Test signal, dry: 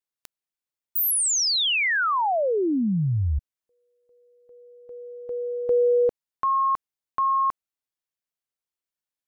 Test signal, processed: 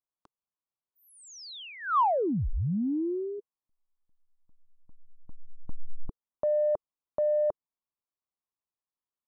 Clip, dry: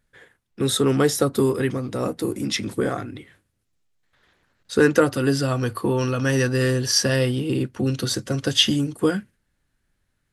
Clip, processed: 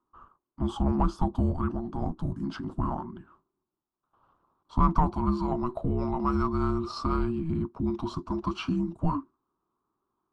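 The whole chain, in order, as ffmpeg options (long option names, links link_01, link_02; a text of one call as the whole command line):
ffmpeg -i in.wav -filter_complex "[0:a]highpass=120,lowpass=4400,afreqshift=-480,highshelf=frequency=1500:width_type=q:width=3:gain=-10.5,asplit=2[link_01][link_02];[link_02]asoftclip=type=tanh:threshold=-15dB,volume=-10.5dB[link_03];[link_01][link_03]amix=inputs=2:normalize=0,volume=-7.5dB" out.wav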